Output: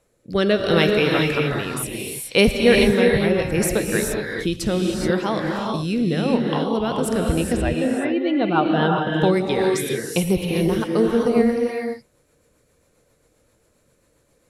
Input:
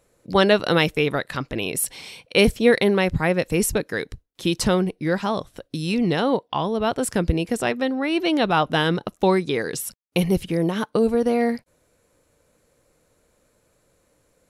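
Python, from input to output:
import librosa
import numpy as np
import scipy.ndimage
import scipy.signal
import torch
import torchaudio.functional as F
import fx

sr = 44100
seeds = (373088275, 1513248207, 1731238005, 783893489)

y = fx.spec_expand(x, sr, power=1.5, at=(7.56, 9.16))
y = fx.rotary_switch(y, sr, hz=0.7, then_hz=7.5, switch_at_s=6.21)
y = fx.rev_gated(y, sr, seeds[0], gate_ms=450, shape='rising', drr_db=0.0)
y = F.gain(torch.from_numpy(y), 1.0).numpy()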